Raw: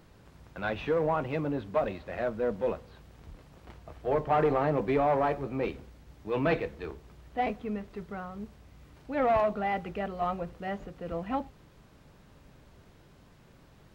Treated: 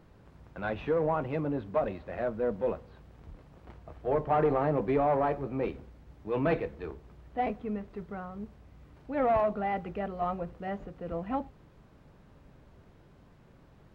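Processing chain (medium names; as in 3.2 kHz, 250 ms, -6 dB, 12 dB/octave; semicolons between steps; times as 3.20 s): treble shelf 2.6 kHz -10.5 dB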